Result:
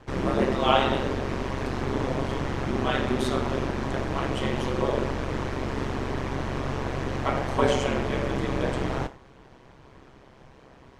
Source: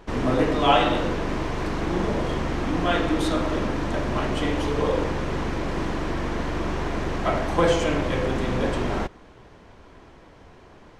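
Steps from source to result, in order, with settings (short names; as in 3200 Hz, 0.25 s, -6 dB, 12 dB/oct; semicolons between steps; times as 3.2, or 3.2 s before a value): non-linear reverb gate 0.14 s falling, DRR 10.5 dB; ring modulator 66 Hz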